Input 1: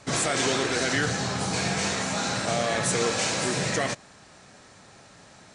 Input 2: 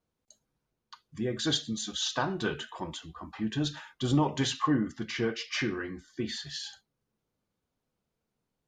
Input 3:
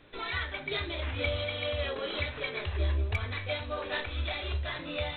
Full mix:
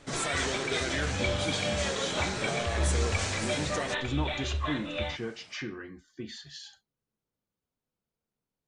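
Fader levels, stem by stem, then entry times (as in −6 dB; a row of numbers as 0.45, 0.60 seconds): −7.5, −6.5, +0.5 decibels; 0.00, 0.00, 0.00 seconds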